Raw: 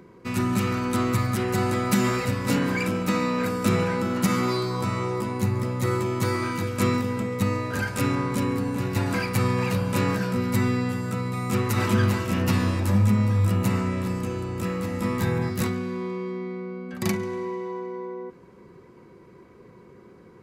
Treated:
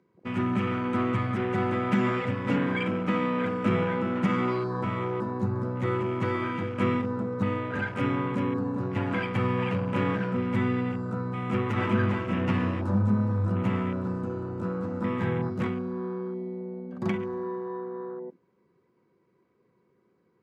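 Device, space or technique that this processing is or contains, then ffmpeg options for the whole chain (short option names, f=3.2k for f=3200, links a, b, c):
over-cleaned archive recording: -af "highpass=110,lowpass=6k,afwtdn=0.0178,volume=-2dB"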